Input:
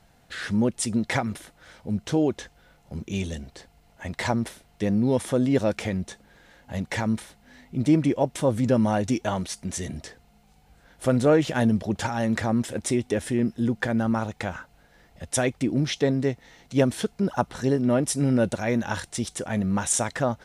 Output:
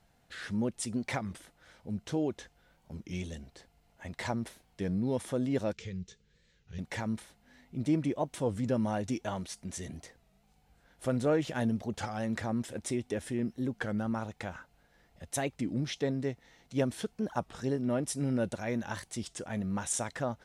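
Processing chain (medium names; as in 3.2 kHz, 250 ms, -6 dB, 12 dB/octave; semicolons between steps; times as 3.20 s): 5.73–6.79 s: FFT filter 180 Hz 0 dB, 260 Hz -18 dB, 440 Hz -1 dB, 650 Hz -26 dB, 1.2 kHz -13 dB, 3.2 kHz -2 dB, 7.1 kHz -2 dB, 11 kHz -30 dB; warped record 33 1/3 rpm, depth 160 cents; trim -9 dB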